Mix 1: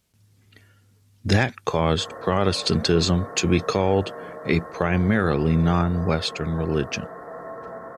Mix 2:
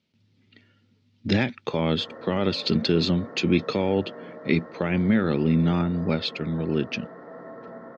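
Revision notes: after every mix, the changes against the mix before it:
master: add speaker cabinet 150–4400 Hz, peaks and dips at 240 Hz +5 dB, 450 Hz -4 dB, 730 Hz -8 dB, 1100 Hz -9 dB, 1600 Hz -7 dB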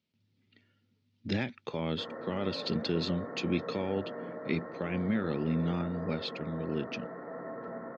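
speech -9.5 dB

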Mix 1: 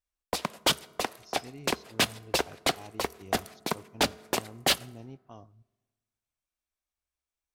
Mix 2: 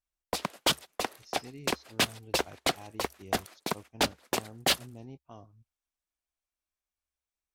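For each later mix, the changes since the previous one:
reverb: off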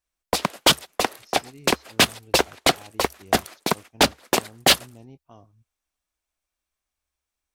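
background +9.5 dB

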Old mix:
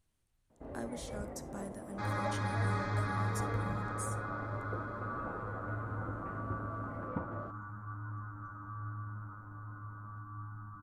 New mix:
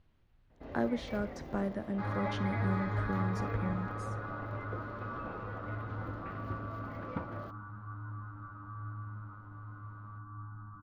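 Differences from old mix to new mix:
speech +11.0 dB; first sound: remove LPF 1100 Hz 12 dB/oct; master: add air absorption 280 m

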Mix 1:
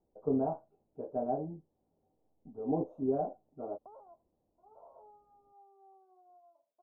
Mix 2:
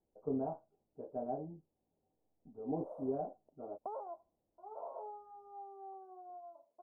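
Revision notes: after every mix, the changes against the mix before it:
speech -6.0 dB; background +11.0 dB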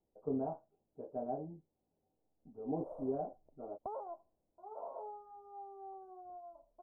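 background: remove HPF 290 Hz 12 dB/oct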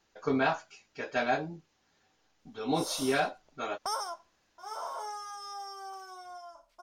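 speech +7.0 dB; master: remove inverse Chebyshev low-pass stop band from 1800 Hz, stop band 50 dB

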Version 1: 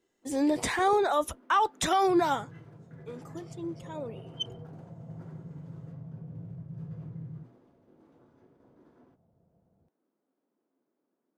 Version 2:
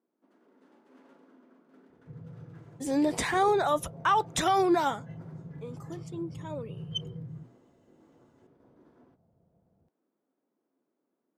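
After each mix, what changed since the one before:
speech: entry +2.55 s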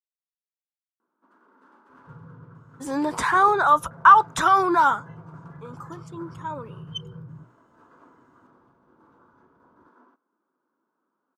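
first sound: entry +1.00 s; master: add band shelf 1200 Hz +14 dB 1 oct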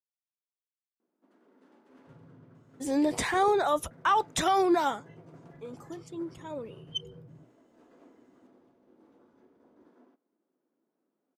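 second sound -10.5 dB; master: add band shelf 1200 Hz -14 dB 1 oct

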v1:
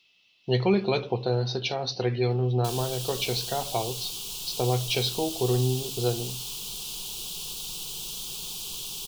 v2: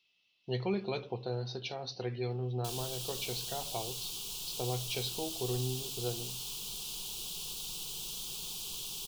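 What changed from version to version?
speech -10.5 dB; background -5.0 dB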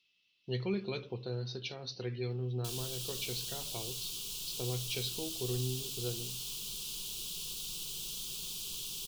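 master: add bell 760 Hz -11 dB 0.85 oct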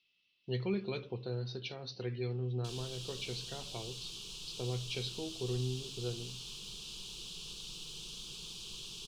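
master: add air absorption 87 m

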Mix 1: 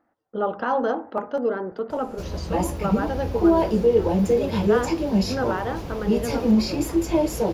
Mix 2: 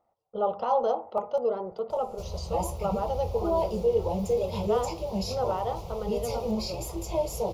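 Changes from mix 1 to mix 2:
background -3.5 dB; master: add fixed phaser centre 680 Hz, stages 4

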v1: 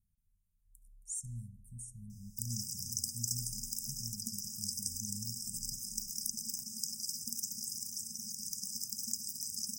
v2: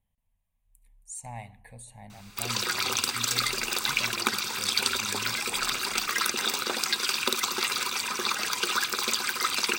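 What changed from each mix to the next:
background +5.5 dB; master: remove brick-wall FIR band-stop 240–4900 Hz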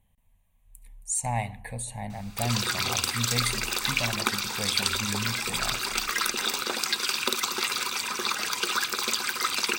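speech +11.5 dB

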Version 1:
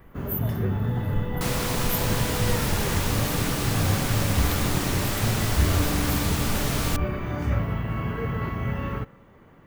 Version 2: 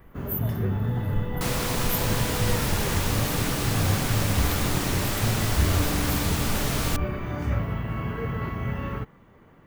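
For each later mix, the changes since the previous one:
reverb: off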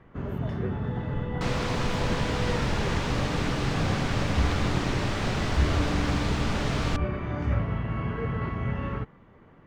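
speech -9.0 dB; master: add air absorption 130 m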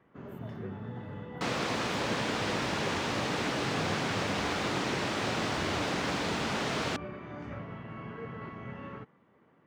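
first sound -8.5 dB; master: add HPF 170 Hz 12 dB/oct

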